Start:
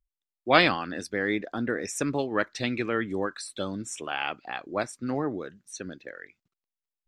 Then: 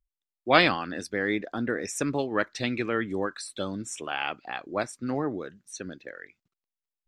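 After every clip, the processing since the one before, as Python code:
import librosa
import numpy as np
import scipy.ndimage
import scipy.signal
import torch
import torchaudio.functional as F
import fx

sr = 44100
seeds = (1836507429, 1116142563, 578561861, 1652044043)

y = x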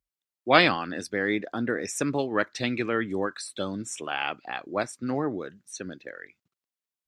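y = scipy.signal.sosfilt(scipy.signal.butter(2, 75.0, 'highpass', fs=sr, output='sos'), x)
y = y * 10.0 ** (1.0 / 20.0)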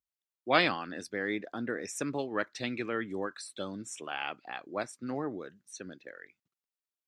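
y = fx.low_shelf(x, sr, hz=61.0, db=-11.5)
y = y * 10.0 ** (-6.5 / 20.0)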